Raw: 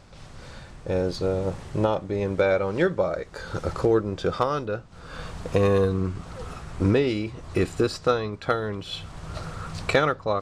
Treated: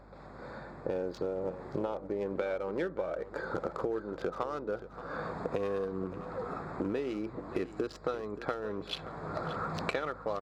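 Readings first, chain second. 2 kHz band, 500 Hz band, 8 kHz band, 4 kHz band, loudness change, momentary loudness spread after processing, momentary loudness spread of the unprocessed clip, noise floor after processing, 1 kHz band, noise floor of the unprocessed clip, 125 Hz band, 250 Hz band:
-10.5 dB, -10.0 dB, under -10 dB, -10.5 dB, -11.0 dB, 5 LU, 16 LU, -49 dBFS, -8.5 dB, -45 dBFS, -16.0 dB, -10.0 dB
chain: local Wiener filter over 15 samples; recorder AGC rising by 5.8 dB/s; high-pass 250 Hz 12 dB/octave; treble shelf 5 kHz -5.5 dB; compression 6:1, threshold -32 dBFS, peak gain reduction 15.5 dB; hum 50 Hz, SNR 21 dB; delay 577 ms -14 dB; trim +1 dB

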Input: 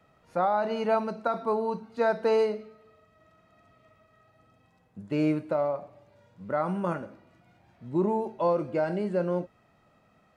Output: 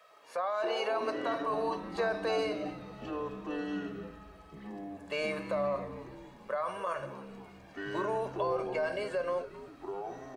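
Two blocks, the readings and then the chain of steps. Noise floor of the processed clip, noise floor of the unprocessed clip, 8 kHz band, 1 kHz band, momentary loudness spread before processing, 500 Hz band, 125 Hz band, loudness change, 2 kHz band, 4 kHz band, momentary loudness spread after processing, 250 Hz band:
-54 dBFS, -65 dBFS, no reading, -4.5 dB, 10 LU, -5.0 dB, -10.0 dB, -6.5 dB, +1.0 dB, +4.5 dB, 14 LU, -7.5 dB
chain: high-pass 820 Hz 12 dB/octave; comb 1.8 ms, depth 79%; in parallel at +0.5 dB: compression, threshold -38 dBFS, peak gain reduction 14.5 dB; on the sum: peak limiter -24.5 dBFS, peak gain reduction 10 dB; ever faster or slower copies 101 ms, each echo -7 st, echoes 3, each echo -6 dB; frequency-shifting echo 267 ms, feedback 50%, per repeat -120 Hz, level -15.5 dB

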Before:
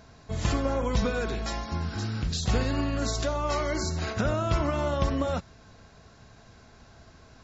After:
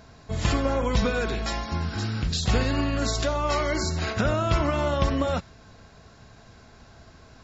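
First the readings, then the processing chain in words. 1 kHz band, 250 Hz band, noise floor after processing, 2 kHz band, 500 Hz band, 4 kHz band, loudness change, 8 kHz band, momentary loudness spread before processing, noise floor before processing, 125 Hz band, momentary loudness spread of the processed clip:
+3.5 dB, +2.5 dB, -52 dBFS, +4.5 dB, +2.5 dB, +4.5 dB, +3.0 dB, no reading, 5 LU, -54 dBFS, +2.5 dB, 5 LU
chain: band-stop 6.1 kHz, Q 22; dynamic bell 2.6 kHz, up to +3 dB, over -44 dBFS, Q 0.77; trim +2.5 dB

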